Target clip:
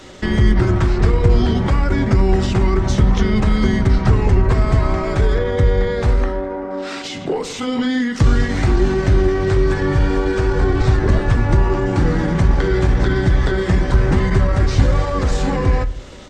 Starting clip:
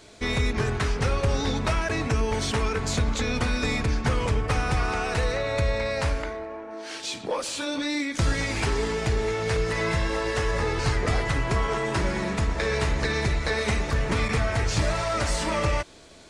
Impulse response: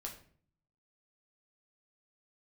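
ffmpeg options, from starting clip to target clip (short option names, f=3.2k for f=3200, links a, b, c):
-filter_complex "[0:a]asetrate=38170,aresample=44100,atempo=1.15535,acrossover=split=360[a][b];[b]acompressor=threshold=-36dB:ratio=6[c];[a][c]amix=inputs=2:normalize=0,asplit=2[d][e];[1:a]atrim=start_sample=2205,lowpass=2.8k[f];[e][f]afir=irnorm=-1:irlink=0,volume=-2dB[g];[d][g]amix=inputs=2:normalize=0,volume=8.5dB"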